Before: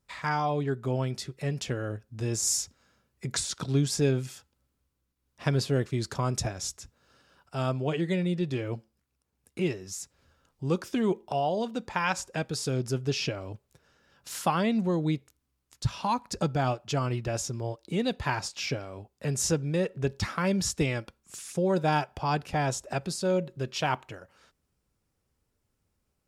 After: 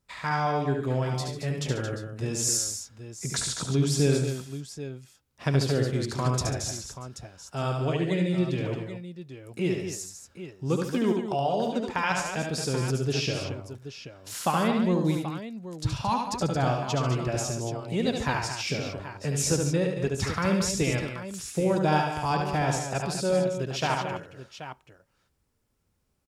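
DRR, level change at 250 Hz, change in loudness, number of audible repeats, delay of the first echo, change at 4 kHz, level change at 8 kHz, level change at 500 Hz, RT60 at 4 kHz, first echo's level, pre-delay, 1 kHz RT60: none, +2.5 dB, +2.0 dB, 4, 72 ms, +2.5 dB, +2.5 dB, +2.5 dB, none, -4.5 dB, none, none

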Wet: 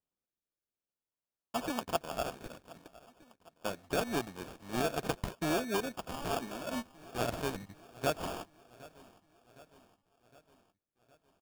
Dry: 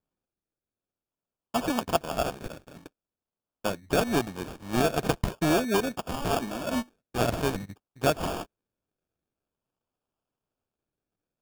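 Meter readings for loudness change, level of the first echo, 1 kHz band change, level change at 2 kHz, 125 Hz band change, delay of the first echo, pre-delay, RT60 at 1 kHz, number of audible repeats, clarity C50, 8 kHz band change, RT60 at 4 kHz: -7.5 dB, -21.0 dB, -7.0 dB, -6.5 dB, -10.0 dB, 0.762 s, none, none, 3, none, -6.5 dB, none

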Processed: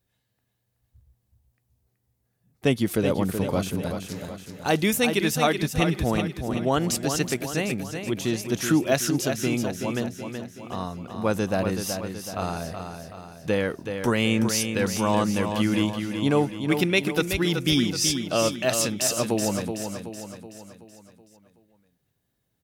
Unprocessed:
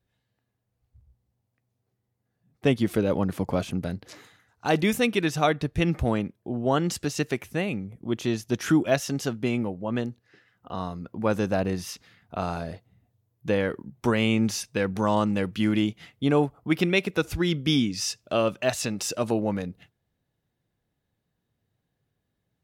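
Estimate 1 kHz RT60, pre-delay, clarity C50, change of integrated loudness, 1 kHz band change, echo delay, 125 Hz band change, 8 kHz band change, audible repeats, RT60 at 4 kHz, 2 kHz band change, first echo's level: none, none, none, +1.5 dB, +1.5 dB, 0.376 s, +1.0 dB, +7.5 dB, 5, none, +2.0 dB, -7.0 dB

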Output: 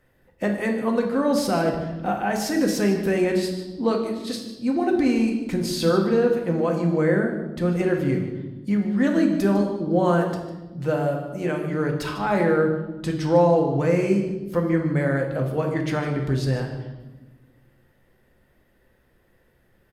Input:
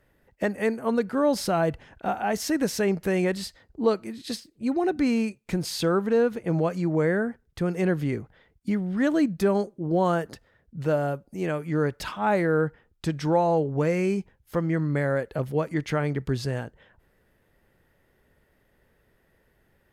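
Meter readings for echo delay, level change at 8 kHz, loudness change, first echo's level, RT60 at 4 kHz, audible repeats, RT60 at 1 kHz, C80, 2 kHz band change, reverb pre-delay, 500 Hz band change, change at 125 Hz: 0.151 s, +1.5 dB, +3.5 dB, -14.0 dB, 1.0 s, 1, 0.95 s, 8.0 dB, +2.5 dB, 4 ms, +3.0 dB, +3.5 dB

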